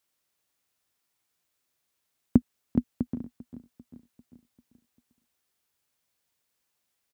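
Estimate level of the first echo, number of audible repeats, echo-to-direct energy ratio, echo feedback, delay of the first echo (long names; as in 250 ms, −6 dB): −17.0 dB, 4, −15.5 dB, 54%, 395 ms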